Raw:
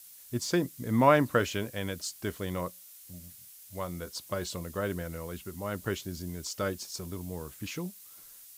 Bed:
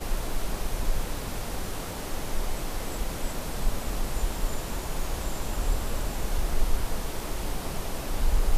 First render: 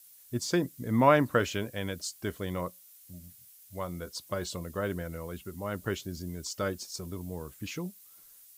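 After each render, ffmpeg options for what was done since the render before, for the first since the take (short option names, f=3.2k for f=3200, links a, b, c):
-af "afftdn=nr=6:nf=-52"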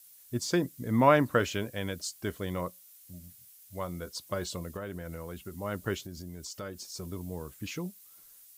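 -filter_complex "[0:a]asettb=1/sr,asplit=3[a][b][c];[a]atrim=end=4.764[d];[b]atrim=start=4.76:end=5.53,asetpts=PTS-STARTPTS,afade=t=in:d=0.004:c=qsin,afade=t=out:st=0.766:d=0.004:c=qsin,acompressor=threshold=-34dB:ratio=6:attack=3.2:release=140:knee=1:detection=peak[e];[c]atrim=start=5.526[f];[d][e]acrossfade=d=0.004:c1=hsin:c2=qsin[g];[g][f]acrossfade=d=0.004:c1=qsin:c2=hsin,asettb=1/sr,asplit=3[h][i][j];[h]atrim=end=6.044[k];[i]atrim=start=6.04:end=6.96,asetpts=PTS-STARTPTS,afade=t=in:d=0.004:c=qsin,afade=t=out:st=0.916:d=0.004:c=qsin,acompressor=threshold=-39dB:ratio=2.5:attack=3.2:release=140:knee=1:detection=peak[l];[j]atrim=start=6.956[m];[k][l]acrossfade=d=0.004:c1=hsin:c2=qsin[n];[n][m]acrossfade=d=0.004:c1=qsin:c2=hsin"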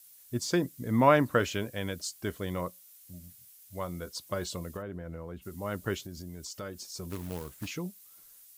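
-filter_complex "[0:a]asplit=3[a][b][c];[a]afade=t=out:st=4.81:d=0.02[d];[b]lowpass=f=1.2k:p=1,afade=t=in:st=4.81:d=0.02,afade=t=out:st=5.41:d=0.02[e];[c]afade=t=in:st=5.41:d=0.02[f];[d][e][f]amix=inputs=3:normalize=0,asettb=1/sr,asplit=3[g][h][i];[g]atrim=end=7.104[j];[h]atrim=start=7.1:end=7.68,asetpts=PTS-STARTPTS,afade=t=in:d=0.004:c=qsin,afade=t=out:st=0.576:d=0.004:c=qsin,acrusher=bits=2:mode=log:mix=0:aa=0.000001[k];[i]atrim=start=7.676[l];[j][k]acrossfade=d=0.004:c1=hsin:c2=qsin[m];[m][l]acrossfade=d=0.004:c1=qsin:c2=hsin"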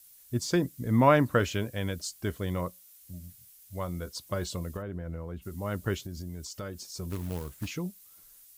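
-af "lowshelf=f=110:g=10"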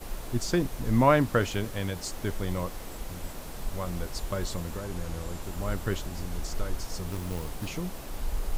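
-filter_complex "[1:a]volume=-7.5dB[a];[0:a][a]amix=inputs=2:normalize=0"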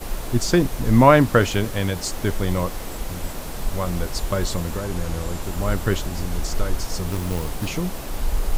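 -af "volume=8.5dB,alimiter=limit=-2dB:level=0:latency=1"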